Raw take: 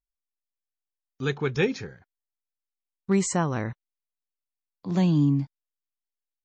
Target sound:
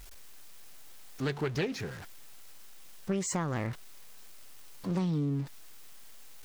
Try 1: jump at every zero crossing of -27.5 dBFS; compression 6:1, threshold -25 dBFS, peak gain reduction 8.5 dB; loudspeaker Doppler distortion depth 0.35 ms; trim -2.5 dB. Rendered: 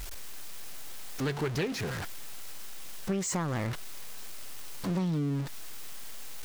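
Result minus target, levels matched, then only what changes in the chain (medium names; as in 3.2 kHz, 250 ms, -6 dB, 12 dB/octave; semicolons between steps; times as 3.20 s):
jump at every zero crossing: distortion +9 dB
change: jump at every zero crossing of -37.5 dBFS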